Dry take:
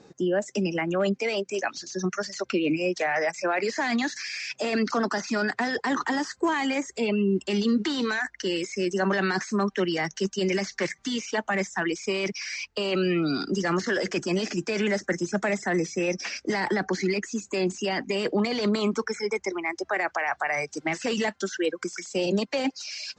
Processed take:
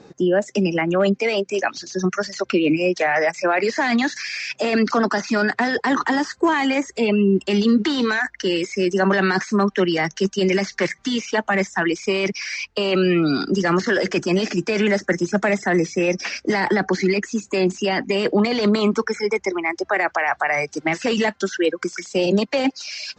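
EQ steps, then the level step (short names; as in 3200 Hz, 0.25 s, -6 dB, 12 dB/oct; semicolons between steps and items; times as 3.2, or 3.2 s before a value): air absorption 63 m; +7.0 dB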